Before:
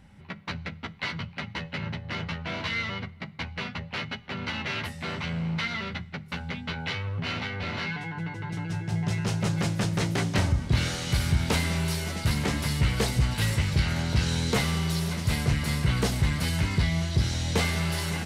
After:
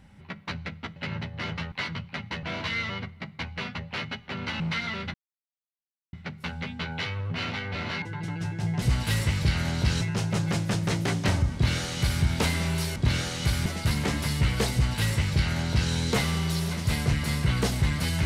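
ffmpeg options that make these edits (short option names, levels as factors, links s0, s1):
-filter_complex "[0:a]asplit=11[s0][s1][s2][s3][s4][s5][s6][s7][s8][s9][s10];[s0]atrim=end=0.962[s11];[s1]atrim=start=1.668:end=2.432[s12];[s2]atrim=start=0.958:end=1.672[s13];[s3]atrim=start=2.428:end=4.602[s14];[s4]atrim=start=5.468:end=6.01,asetpts=PTS-STARTPTS,afade=t=out:st=0.538:d=0.004:c=hsin,apad=pad_dur=0.99[s15];[s5]atrim=start=6.01:end=7.902,asetpts=PTS-STARTPTS,afade=t=in:d=0.004:c=hsin[s16];[s6]atrim=start=8.308:end=9.112[s17];[s7]atrim=start=13.128:end=14.322[s18];[s8]atrim=start=9.108:end=12.062[s19];[s9]atrim=start=10.628:end=11.332[s20];[s10]atrim=start=12.058[s21];[s11][s12]acrossfade=d=0.004:c1=hsin:c2=hsin[s22];[s22][s13]acrossfade=d=0.004:c1=hsin:c2=hsin[s23];[s23][s14]acrossfade=d=0.004:c1=hsin:c2=hsin[s24];[s15][s16]concat=n=2:v=0:a=1[s25];[s24][s25]acrossfade=d=0.004:c1=hsin:c2=hsin[s26];[s26][s17]acrossfade=d=0.004:c1=hsin:c2=hsin[s27];[s27][s18]acrossfade=d=0.004:c1=hsin:c2=hsin[s28];[s28][s19]acrossfade=d=0.004:c1=hsin:c2=hsin[s29];[s29][s20]acrossfade=d=0.004:c1=hsin:c2=hsin[s30];[s30][s21]acrossfade=d=0.004:c1=hsin:c2=hsin"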